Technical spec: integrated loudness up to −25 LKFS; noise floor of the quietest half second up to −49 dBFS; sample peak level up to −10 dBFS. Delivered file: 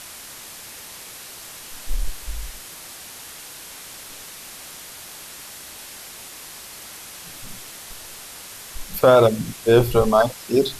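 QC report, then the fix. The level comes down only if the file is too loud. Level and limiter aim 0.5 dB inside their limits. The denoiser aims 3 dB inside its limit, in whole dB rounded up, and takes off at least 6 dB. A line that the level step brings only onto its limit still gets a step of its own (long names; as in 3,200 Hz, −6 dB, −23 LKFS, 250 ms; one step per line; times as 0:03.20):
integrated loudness −19.0 LKFS: out of spec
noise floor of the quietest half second −39 dBFS: out of spec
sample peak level −4.0 dBFS: out of spec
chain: broadband denoise 7 dB, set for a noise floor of −39 dBFS
level −6.5 dB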